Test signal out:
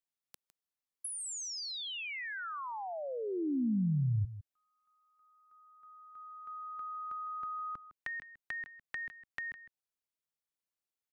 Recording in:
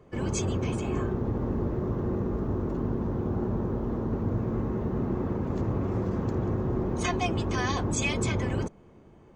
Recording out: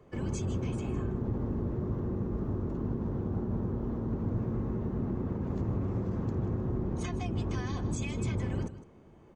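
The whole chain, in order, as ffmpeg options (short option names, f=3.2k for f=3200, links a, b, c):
-filter_complex "[0:a]acrossover=split=290[a][b];[b]acompressor=threshold=-38dB:ratio=6[c];[a][c]amix=inputs=2:normalize=0,asplit=2[d][e];[e]aecho=0:1:157:0.2[f];[d][f]amix=inputs=2:normalize=0,volume=-2.5dB"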